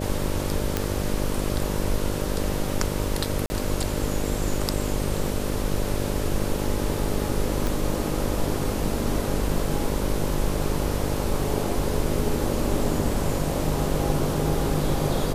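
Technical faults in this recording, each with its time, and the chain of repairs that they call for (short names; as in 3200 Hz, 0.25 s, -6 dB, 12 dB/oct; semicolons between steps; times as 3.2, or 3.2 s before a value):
buzz 50 Hz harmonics 12 -29 dBFS
0.77 pop -8 dBFS
3.46–3.5 gap 40 ms
7.67 pop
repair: de-click; de-hum 50 Hz, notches 12; interpolate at 3.46, 40 ms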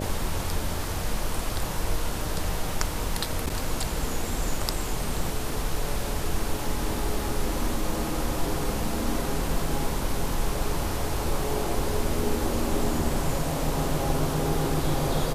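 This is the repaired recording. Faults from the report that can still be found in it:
none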